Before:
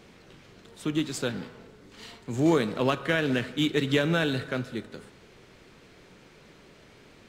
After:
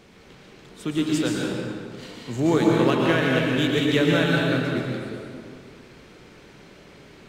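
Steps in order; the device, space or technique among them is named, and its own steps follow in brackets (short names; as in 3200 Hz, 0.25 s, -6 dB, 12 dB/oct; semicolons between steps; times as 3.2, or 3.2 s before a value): stairwell (reverb RT60 2.1 s, pre-delay 0.108 s, DRR -2.5 dB); gain +1 dB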